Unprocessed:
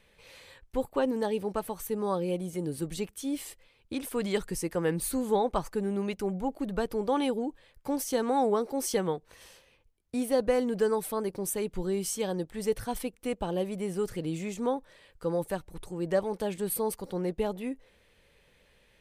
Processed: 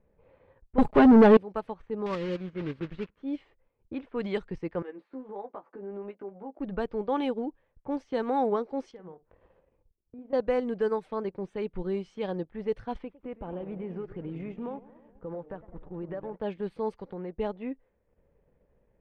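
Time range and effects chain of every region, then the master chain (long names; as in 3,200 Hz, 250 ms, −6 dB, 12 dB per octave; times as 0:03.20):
0:00.78–0:01.37: low-shelf EQ 280 Hz +9 dB + comb filter 4.8 ms, depth 89% + leveller curve on the samples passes 3
0:02.06–0:03.23: one scale factor per block 3 bits + parametric band 740 Hz −12.5 dB 0.39 octaves
0:04.82–0:06.59: high-pass filter 260 Hz 24 dB per octave + downward compressor 3 to 1, threshold −40 dBFS + double-tracking delay 15 ms −4 dB
0:08.91–0:10.33: downward compressor 4 to 1, threshold −44 dBFS + double-tracking delay 49 ms −10.5 dB
0:12.98–0:16.36: notch filter 4,100 Hz, Q 15 + downward compressor, threshold −32 dBFS + feedback echo with a swinging delay time 104 ms, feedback 63%, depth 214 cents, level −12 dB
0:16.98–0:17.38: high-shelf EQ 2,700 Hz +11 dB + downward compressor 12 to 1, threshold −32 dBFS
whole clip: low-pass that shuts in the quiet parts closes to 680 Hz, open at −23.5 dBFS; transient designer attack −2 dB, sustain −8 dB; low-pass filter 2,900 Hz 12 dB per octave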